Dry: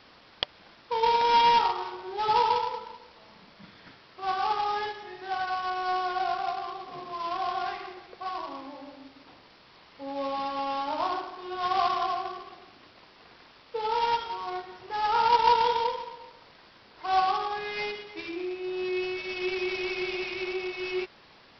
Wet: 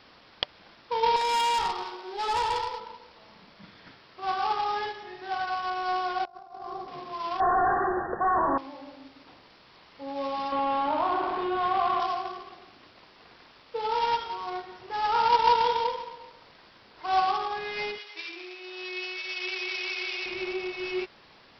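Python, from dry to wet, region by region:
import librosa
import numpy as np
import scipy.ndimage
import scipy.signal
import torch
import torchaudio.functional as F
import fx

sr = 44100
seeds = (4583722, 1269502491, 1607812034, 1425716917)

y = fx.chain(x, sr, fx.highpass(hz=220.0, slope=24),
    fx.high_shelf(hz=3800.0, db=9.0),
    fx.tube_stage(drive_db=22.0, bias=0.4), at=(1.16, 2.8))
y = fx.chain(y, sr, fx.over_compress(threshold_db=-37.0, ratio=-0.5),
    fx.peak_eq(hz=2800.0, db=-14.5, octaves=1.9), at=(6.25, 6.88))
y = fx.chain(y, sr, fx.leveller(passes=5),
    fx.brickwall_lowpass(high_hz=1900.0), at=(7.4, 8.58))
y = fx.chain(y, sr, fx.air_absorb(metres=300.0),
    fx.env_flatten(amount_pct=70), at=(10.52, 12.0))
y = fx.chain(y, sr, fx.highpass(hz=910.0, slope=6),
    fx.tilt_eq(slope=2.0), at=(17.98, 20.26))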